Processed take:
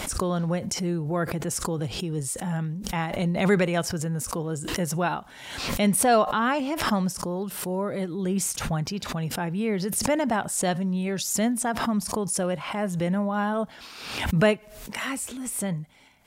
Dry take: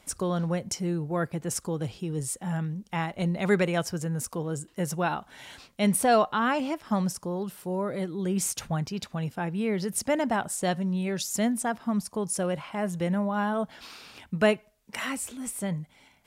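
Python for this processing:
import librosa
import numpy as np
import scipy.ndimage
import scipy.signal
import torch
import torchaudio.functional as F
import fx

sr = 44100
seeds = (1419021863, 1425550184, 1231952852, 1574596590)

y = fx.pre_swell(x, sr, db_per_s=55.0)
y = y * 10.0 ** (1.5 / 20.0)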